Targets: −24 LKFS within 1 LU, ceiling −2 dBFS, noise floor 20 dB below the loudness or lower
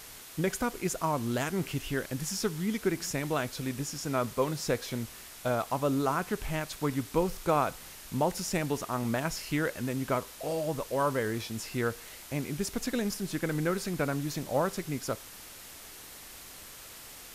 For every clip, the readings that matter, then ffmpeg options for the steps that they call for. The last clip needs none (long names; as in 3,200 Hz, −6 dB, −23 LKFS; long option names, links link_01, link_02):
background noise floor −48 dBFS; target noise floor −52 dBFS; integrated loudness −32.0 LKFS; sample peak −14.0 dBFS; target loudness −24.0 LKFS
→ -af "afftdn=noise_reduction=6:noise_floor=-48"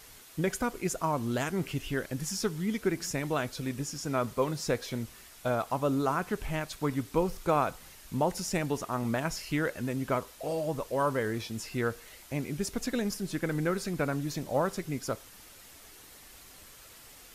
background noise floor −52 dBFS; integrated loudness −32.0 LKFS; sample peak −14.0 dBFS; target loudness −24.0 LKFS
→ -af "volume=8dB"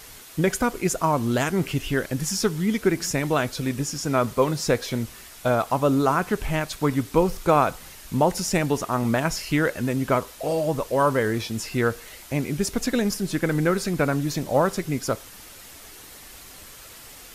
integrated loudness −24.0 LKFS; sample peak −6.0 dBFS; background noise floor −44 dBFS